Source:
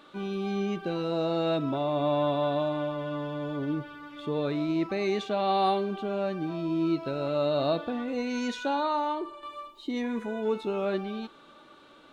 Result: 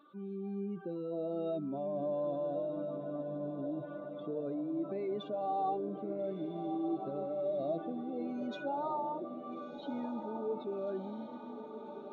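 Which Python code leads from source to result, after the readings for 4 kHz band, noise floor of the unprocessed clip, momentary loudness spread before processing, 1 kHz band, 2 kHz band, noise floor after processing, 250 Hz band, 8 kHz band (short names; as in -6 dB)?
-19.0 dB, -54 dBFS, 9 LU, -8.5 dB, -16.5 dB, -47 dBFS, -8.0 dB, n/a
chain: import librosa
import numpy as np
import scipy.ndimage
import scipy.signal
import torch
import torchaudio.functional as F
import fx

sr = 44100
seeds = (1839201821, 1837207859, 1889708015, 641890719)

y = fx.spec_expand(x, sr, power=2.0)
y = fx.echo_diffused(y, sr, ms=1348, feedback_pct=59, wet_db=-8.5)
y = y * librosa.db_to_amplitude(-8.5)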